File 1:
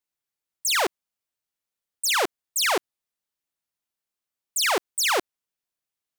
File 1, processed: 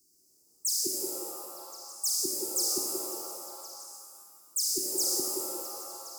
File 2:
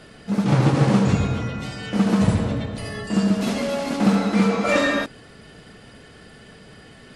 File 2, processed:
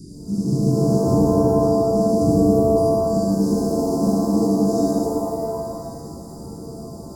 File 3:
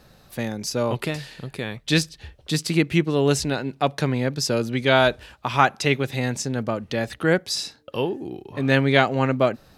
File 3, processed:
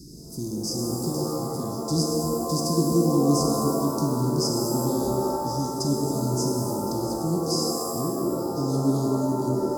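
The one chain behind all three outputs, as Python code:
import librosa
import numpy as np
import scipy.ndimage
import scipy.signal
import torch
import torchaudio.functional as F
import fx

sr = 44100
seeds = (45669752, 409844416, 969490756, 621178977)

y = fx.bin_compress(x, sr, power=0.6)
y = scipy.signal.sosfilt(scipy.signal.cheby1(5, 1.0, [360.0, 4900.0], 'bandstop', fs=sr, output='sos'), y)
y = fx.echo_stepped(y, sr, ms=177, hz=430.0, octaves=0.7, feedback_pct=70, wet_db=0)
y = fx.rev_shimmer(y, sr, seeds[0], rt60_s=1.8, semitones=7, shimmer_db=-2, drr_db=1.0)
y = y * librosa.db_to_amplitude(-5.0)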